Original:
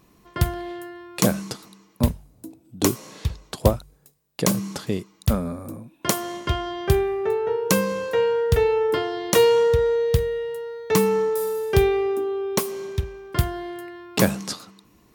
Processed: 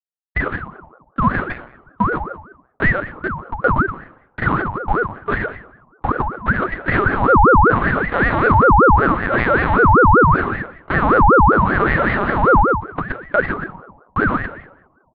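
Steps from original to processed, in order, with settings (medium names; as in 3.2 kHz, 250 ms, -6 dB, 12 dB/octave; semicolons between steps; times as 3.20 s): recorder AGC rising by 6.4 dB/s; elliptic low-pass 2.6 kHz, stop band 70 dB; frequency-shifting echo 112 ms, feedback 48%, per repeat +47 Hz, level -8.5 dB; Schmitt trigger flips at -19.5 dBFS; on a send at -4 dB: reverberation RT60 0.80 s, pre-delay 5 ms; on the sum: wah-wah 0.77 Hz 450–1000 Hz, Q 9.5; LPC vocoder at 8 kHz pitch kept; high-pass 160 Hz 12 dB/octave; in parallel at -2 dB: compression, threshold -46 dBFS, peak gain reduction 23 dB; on the sum: loudness maximiser +27.5 dB; ring modulator with a swept carrier 680 Hz, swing 45%, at 5.2 Hz; trim -2.5 dB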